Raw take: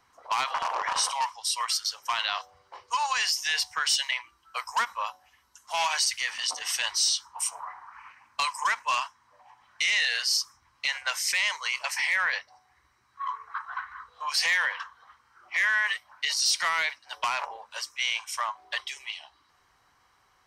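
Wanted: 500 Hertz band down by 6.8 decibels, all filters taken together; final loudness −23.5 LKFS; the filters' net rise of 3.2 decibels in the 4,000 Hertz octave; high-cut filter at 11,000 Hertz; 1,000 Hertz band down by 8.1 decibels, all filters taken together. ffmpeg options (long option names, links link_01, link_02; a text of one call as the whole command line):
ffmpeg -i in.wav -af "lowpass=11000,equalizer=frequency=500:width_type=o:gain=-5.5,equalizer=frequency=1000:width_type=o:gain=-8.5,equalizer=frequency=4000:width_type=o:gain=5,volume=2.5dB" out.wav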